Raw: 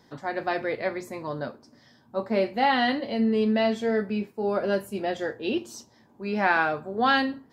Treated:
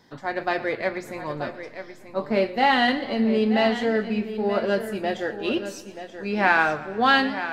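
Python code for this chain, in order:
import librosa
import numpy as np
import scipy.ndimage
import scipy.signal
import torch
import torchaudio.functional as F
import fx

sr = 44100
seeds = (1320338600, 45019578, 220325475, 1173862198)

p1 = fx.peak_eq(x, sr, hz=2400.0, db=3.5, octaves=1.7)
p2 = fx.backlash(p1, sr, play_db=-22.0)
p3 = p1 + (p2 * librosa.db_to_amplitude(-12.0))
p4 = p3 + 10.0 ** (-11.0 / 20.0) * np.pad(p3, (int(931 * sr / 1000.0), 0))[:len(p3)]
y = fx.echo_warbled(p4, sr, ms=117, feedback_pct=64, rate_hz=2.8, cents=113, wet_db=-17.5)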